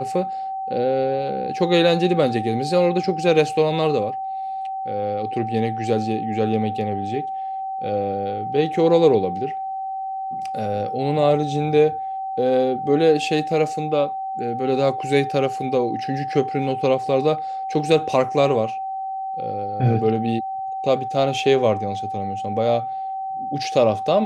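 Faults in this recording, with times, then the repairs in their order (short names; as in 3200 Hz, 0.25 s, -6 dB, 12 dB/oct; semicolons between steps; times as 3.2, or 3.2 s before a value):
tone 770 Hz -25 dBFS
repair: notch 770 Hz, Q 30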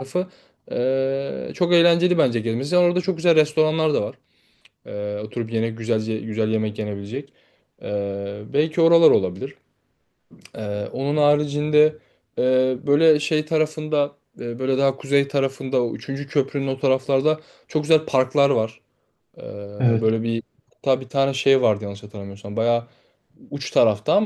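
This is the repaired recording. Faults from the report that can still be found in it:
none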